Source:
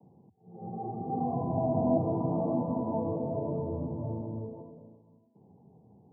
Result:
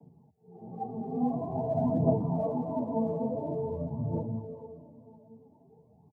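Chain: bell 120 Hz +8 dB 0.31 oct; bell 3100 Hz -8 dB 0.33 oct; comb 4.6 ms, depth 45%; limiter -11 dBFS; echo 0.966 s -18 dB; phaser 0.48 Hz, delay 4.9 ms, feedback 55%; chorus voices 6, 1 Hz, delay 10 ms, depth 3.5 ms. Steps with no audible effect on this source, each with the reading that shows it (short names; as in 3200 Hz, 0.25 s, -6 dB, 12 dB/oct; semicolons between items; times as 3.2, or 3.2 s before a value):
bell 3100 Hz: input band ends at 1000 Hz; limiter -11 dBFS: input peak -13.0 dBFS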